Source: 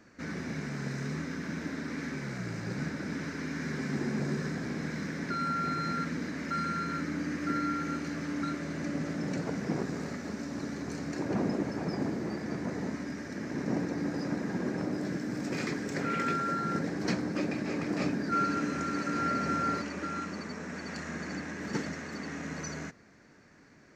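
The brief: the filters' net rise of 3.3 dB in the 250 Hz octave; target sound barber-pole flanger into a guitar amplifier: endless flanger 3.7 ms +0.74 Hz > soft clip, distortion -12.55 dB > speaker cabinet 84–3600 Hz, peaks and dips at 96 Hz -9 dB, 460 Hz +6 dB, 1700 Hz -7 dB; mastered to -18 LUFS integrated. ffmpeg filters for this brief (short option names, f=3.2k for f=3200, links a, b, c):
-filter_complex "[0:a]equalizer=f=250:t=o:g=4,asplit=2[a][b];[b]adelay=3.7,afreqshift=0.74[c];[a][c]amix=inputs=2:normalize=1,asoftclip=threshold=-31dB,highpass=84,equalizer=f=96:t=q:w=4:g=-9,equalizer=f=460:t=q:w=4:g=6,equalizer=f=1.7k:t=q:w=4:g=-7,lowpass=f=3.6k:w=0.5412,lowpass=f=3.6k:w=1.3066,volume=20dB"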